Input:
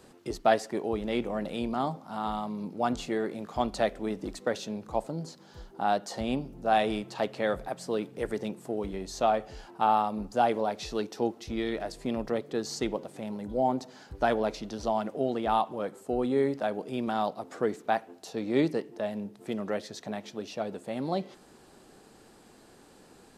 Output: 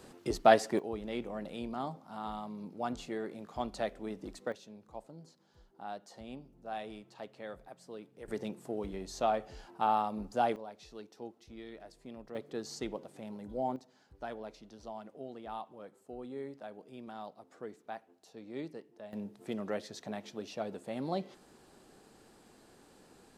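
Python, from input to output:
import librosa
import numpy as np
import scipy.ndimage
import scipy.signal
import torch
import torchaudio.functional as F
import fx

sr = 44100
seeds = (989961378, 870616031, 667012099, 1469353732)

y = fx.gain(x, sr, db=fx.steps((0.0, 1.0), (0.79, -8.0), (4.52, -16.0), (8.28, -5.0), (10.56, -16.5), (12.35, -8.0), (13.76, -16.0), (19.13, -4.5)))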